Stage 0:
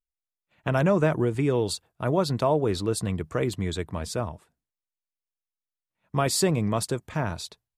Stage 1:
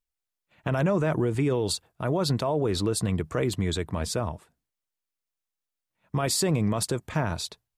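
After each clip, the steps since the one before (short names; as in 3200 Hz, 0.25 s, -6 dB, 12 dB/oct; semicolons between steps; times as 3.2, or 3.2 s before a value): limiter -20 dBFS, peak gain reduction 9.5 dB; gain +3.5 dB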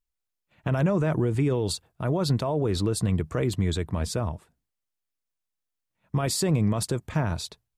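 low shelf 210 Hz +6.5 dB; gain -2 dB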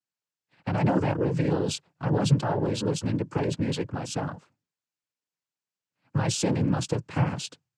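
noise vocoder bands 8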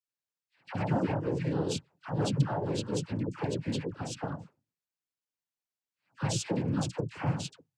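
dispersion lows, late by 78 ms, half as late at 1000 Hz; gain -5.5 dB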